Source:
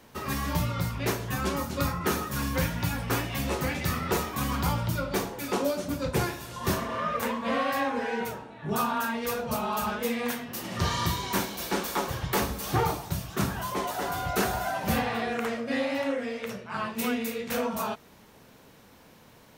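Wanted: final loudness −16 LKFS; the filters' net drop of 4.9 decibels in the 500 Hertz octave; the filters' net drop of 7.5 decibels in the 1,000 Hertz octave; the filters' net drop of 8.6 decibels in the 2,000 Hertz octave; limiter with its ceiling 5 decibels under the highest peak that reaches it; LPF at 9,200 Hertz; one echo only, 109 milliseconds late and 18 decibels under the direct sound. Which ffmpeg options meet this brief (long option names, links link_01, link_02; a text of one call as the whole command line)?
ffmpeg -i in.wav -af "lowpass=9200,equalizer=frequency=500:width_type=o:gain=-4,equalizer=frequency=1000:width_type=o:gain=-6,equalizer=frequency=2000:width_type=o:gain=-9,alimiter=limit=-22dB:level=0:latency=1,aecho=1:1:109:0.126,volume=18dB" out.wav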